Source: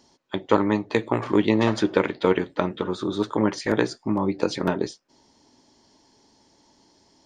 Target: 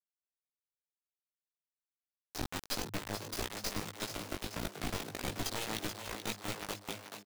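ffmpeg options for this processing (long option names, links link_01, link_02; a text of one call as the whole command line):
ffmpeg -i in.wav -filter_complex "[0:a]areverse,bandreject=frequency=145.6:width_type=h:width=4,bandreject=frequency=291.2:width_type=h:width=4,bandreject=frequency=436.8:width_type=h:width=4,bandreject=frequency=582.4:width_type=h:width=4,bandreject=frequency=728:width_type=h:width=4,bandreject=frequency=873.6:width_type=h:width=4,bandreject=frequency=1019.2:width_type=h:width=4,bandreject=frequency=1164.8:width_type=h:width=4,bandreject=frequency=1310.4:width_type=h:width=4,bandreject=frequency=1456:width_type=h:width=4,bandreject=frequency=1601.6:width_type=h:width=4,bandreject=frequency=1747.2:width_type=h:width=4,bandreject=frequency=1892.8:width_type=h:width=4,bandreject=frequency=2038.4:width_type=h:width=4,bandreject=frequency=2184:width_type=h:width=4,bandreject=frequency=2329.6:width_type=h:width=4,bandreject=frequency=2475.2:width_type=h:width=4,bandreject=frequency=2620.8:width_type=h:width=4,bandreject=frequency=2766.4:width_type=h:width=4,bandreject=frequency=2912:width_type=h:width=4,bandreject=frequency=3057.6:width_type=h:width=4,bandreject=frequency=3203.2:width_type=h:width=4,bandreject=frequency=3348.8:width_type=h:width=4,bandreject=frequency=3494.4:width_type=h:width=4,bandreject=frequency=3640:width_type=h:width=4,bandreject=frequency=3785.6:width_type=h:width=4,bandreject=frequency=3931.2:width_type=h:width=4,bandreject=frequency=4076.8:width_type=h:width=4,bandreject=frequency=4222.4:width_type=h:width=4,bandreject=frequency=4368:width_type=h:width=4,bandreject=frequency=4513.6:width_type=h:width=4,bandreject=frequency=4659.2:width_type=h:width=4,bandreject=frequency=4804.8:width_type=h:width=4,bandreject=frequency=4950.4:width_type=h:width=4,acrossover=split=3000[link_01][link_02];[link_01]acompressor=threshold=-34dB:ratio=4[link_03];[link_03][link_02]amix=inputs=2:normalize=0,aeval=exprs='0.158*(cos(1*acos(clip(val(0)/0.158,-1,1)))-cos(1*PI/2))+0.0158*(cos(3*acos(clip(val(0)/0.158,-1,1)))-cos(3*PI/2))+0.00447*(cos(4*acos(clip(val(0)/0.158,-1,1)))-cos(4*PI/2))+0.00562*(cos(5*acos(clip(val(0)/0.158,-1,1)))-cos(5*PI/2))+0.0178*(cos(8*acos(clip(val(0)/0.158,-1,1)))-cos(8*PI/2))':channel_layout=same,asplit=2[link_04][link_05];[link_05]acrusher=samples=42:mix=1:aa=0.000001:lfo=1:lforange=42:lforate=0.68,volume=-11dB[link_06];[link_04][link_06]amix=inputs=2:normalize=0,acrossover=split=120|3000[link_07][link_08][link_09];[link_08]acompressor=threshold=-35dB:ratio=10[link_10];[link_07][link_10][link_09]amix=inputs=3:normalize=0,acrusher=bits=4:mix=0:aa=0.000001,flanger=delay=16.5:depth=3.2:speed=1.7,asplit=8[link_11][link_12][link_13][link_14][link_15][link_16][link_17][link_18];[link_12]adelay=432,afreqshift=100,volume=-8dB[link_19];[link_13]adelay=864,afreqshift=200,volume=-12.9dB[link_20];[link_14]adelay=1296,afreqshift=300,volume=-17.8dB[link_21];[link_15]adelay=1728,afreqshift=400,volume=-22.6dB[link_22];[link_16]adelay=2160,afreqshift=500,volume=-27.5dB[link_23];[link_17]adelay=2592,afreqshift=600,volume=-32.4dB[link_24];[link_18]adelay=3024,afreqshift=700,volume=-37.3dB[link_25];[link_11][link_19][link_20][link_21][link_22][link_23][link_24][link_25]amix=inputs=8:normalize=0" out.wav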